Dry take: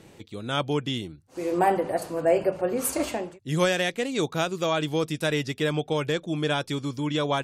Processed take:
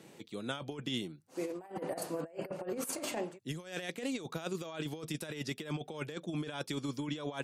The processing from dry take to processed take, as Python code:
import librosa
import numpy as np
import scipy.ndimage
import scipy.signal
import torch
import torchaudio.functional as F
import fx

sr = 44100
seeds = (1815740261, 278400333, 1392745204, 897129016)

y = scipy.signal.sosfilt(scipy.signal.butter(4, 140.0, 'highpass', fs=sr, output='sos'), x)
y = fx.high_shelf(y, sr, hz=8000.0, db=3.5)
y = fx.over_compress(y, sr, threshold_db=-29.0, ratio=-0.5)
y = F.gain(torch.from_numpy(y), -8.5).numpy()